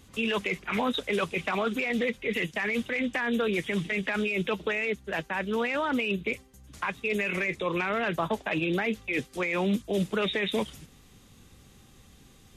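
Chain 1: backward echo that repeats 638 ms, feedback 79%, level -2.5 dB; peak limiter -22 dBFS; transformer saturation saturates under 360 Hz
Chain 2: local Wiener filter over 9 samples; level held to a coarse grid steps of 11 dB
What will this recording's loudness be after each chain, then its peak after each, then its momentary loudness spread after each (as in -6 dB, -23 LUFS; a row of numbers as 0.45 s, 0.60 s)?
-31.0 LUFS, -34.0 LUFS; -22.0 dBFS, -20.0 dBFS; 1 LU, 3 LU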